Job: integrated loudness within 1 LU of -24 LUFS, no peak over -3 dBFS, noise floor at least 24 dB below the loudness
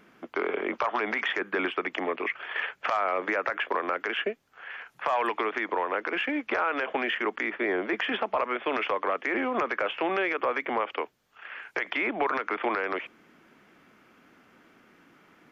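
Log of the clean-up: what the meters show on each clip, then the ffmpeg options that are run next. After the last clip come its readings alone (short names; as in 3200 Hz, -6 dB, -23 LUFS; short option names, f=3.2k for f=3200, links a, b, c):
loudness -29.0 LUFS; peak -15.5 dBFS; loudness target -24.0 LUFS
-> -af "volume=5dB"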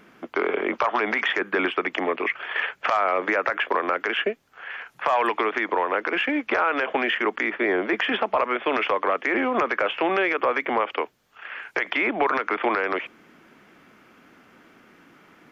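loudness -24.0 LUFS; peak -10.5 dBFS; noise floor -56 dBFS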